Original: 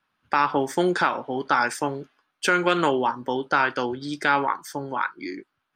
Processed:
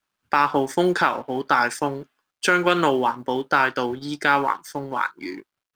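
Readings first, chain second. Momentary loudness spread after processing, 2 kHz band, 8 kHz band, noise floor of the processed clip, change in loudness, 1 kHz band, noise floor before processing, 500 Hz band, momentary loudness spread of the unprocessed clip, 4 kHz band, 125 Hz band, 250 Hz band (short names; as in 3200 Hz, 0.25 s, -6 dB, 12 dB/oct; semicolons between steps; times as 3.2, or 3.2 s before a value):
9 LU, +2.0 dB, +1.0 dB, -84 dBFS, +2.0 dB, +2.0 dB, -77 dBFS, +2.0 dB, 9 LU, +2.0 dB, +2.0 dB, +2.0 dB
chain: G.711 law mismatch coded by A; gain +2.5 dB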